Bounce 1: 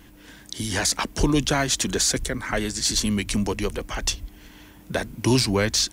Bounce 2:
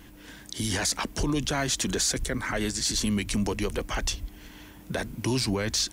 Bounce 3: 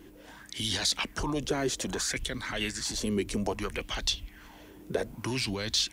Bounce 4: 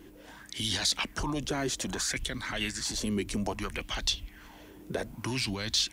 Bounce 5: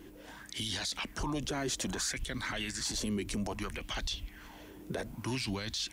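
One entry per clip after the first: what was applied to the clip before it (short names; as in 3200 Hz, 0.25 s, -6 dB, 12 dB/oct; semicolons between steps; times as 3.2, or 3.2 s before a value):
limiter -18.5 dBFS, peak gain reduction 9.5 dB
LFO bell 0.62 Hz 370–4000 Hz +15 dB; gain -6.5 dB
dynamic EQ 450 Hz, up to -6 dB, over -46 dBFS, Q 2.6
limiter -26.5 dBFS, peak gain reduction 11.5 dB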